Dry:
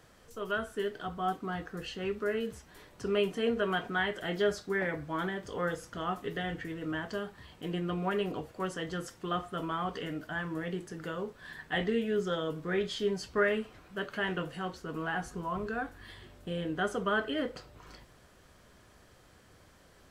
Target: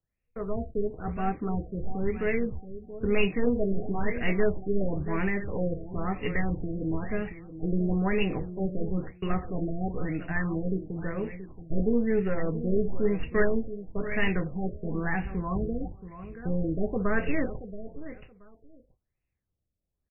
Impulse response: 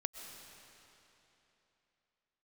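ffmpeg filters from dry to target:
-filter_complex "[0:a]agate=range=-36dB:threshold=-45dB:ratio=16:detection=peak,acrossover=split=750|4500[link_01][link_02][link_03];[link_02]aexciter=amount=6.2:drive=9.7:freq=2100[link_04];[link_01][link_04][link_03]amix=inputs=3:normalize=0,asetrate=45392,aresample=44100,atempo=0.971532,aeval=exprs='0.501*(cos(1*acos(clip(val(0)/0.501,-1,1)))-cos(1*PI/2))+0.0251*(cos(6*acos(clip(val(0)/0.501,-1,1)))-cos(6*PI/2))':channel_layout=same,asoftclip=type=hard:threshold=-17dB,aemphasis=mode=reproduction:type=riaa,aecho=1:1:677|1354:0.237|0.0427,afftfilt=real='re*lt(b*sr/1024,690*pow(2900/690,0.5+0.5*sin(2*PI*1*pts/sr)))':imag='im*lt(b*sr/1024,690*pow(2900/690,0.5+0.5*sin(2*PI*1*pts/sr)))':win_size=1024:overlap=0.75"

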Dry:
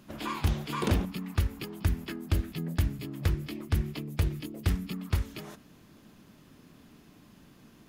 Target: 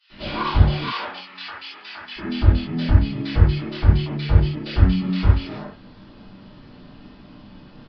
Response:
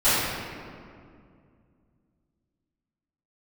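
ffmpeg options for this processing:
-filter_complex "[0:a]asettb=1/sr,asplit=3[link_01][link_02][link_03];[link_01]atrim=end=0.724[link_04];[link_02]atrim=start=0.72:end=2.06,asetpts=PTS-STARTPTS,afade=type=in:duration=0.004:curve=qsin,afade=type=out:start_time=1.336:duration=0.004:curve=qsin,highpass=1200[link_05];[link_03]atrim=start=2.056[link_06];[link_04][link_05]acrossfade=duration=0.004:curve1=hsin:curve2=qsin[link_07];[link_07][link_06]acrossfade=duration=0.004:curve1=qsin:curve2=hsin,acrossover=split=1900[link_08][link_09];[link_08]adelay=100[link_10];[link_10][link_09]amix=inputs=2:normalize=0[link_11];[1:a]atrim=start_sample=2205,atrim=end_sample=4410[link_12];[link_11][link_12]afir=irnorm=-1:irlink=0,aresample=11025,aresample=44100,volume=-4.5dB"

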